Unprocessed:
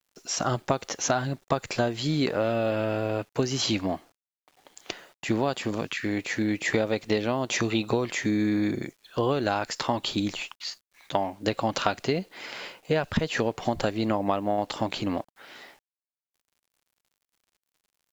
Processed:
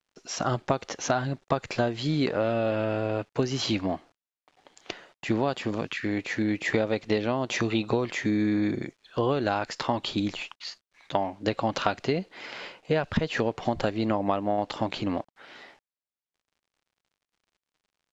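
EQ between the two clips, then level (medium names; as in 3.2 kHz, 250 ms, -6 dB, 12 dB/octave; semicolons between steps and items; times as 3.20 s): distance through air 85 m; 0.0 dB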